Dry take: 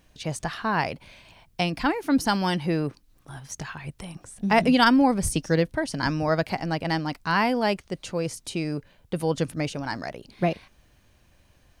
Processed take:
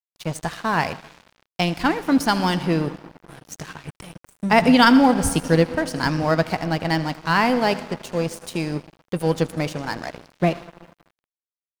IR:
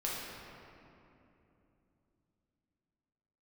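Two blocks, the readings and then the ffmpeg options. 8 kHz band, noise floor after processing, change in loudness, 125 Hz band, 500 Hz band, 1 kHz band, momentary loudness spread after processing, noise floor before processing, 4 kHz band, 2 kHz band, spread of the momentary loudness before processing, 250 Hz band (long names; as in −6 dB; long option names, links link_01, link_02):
+2.5 dB, below −85 dBFS, +4.5 dB, +4.0 dB, +4.0 dB, +4.0 dB, 19 LU, −61 dBFS, +4.0 dB, +4.0 dB, 17 LU, +4.5 dB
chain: -filter_complex "[0:a]aecho=1:1:12|80:0.178|0.15,asplit=2[link_01][link_02];[1:a]atrim=start_sample=2205,adelay=119[link_03];[link_02][link_03]afir=irnorm=-1:irlink=0,volume=-17.5dB[link_04];[link_01][link_04]amix=inputs=2:normalize=0,aeval=exprs='sgn(val(0))*max(abs(val(0))-0.0126,0)':channel_layout=same,volume=4.5dB"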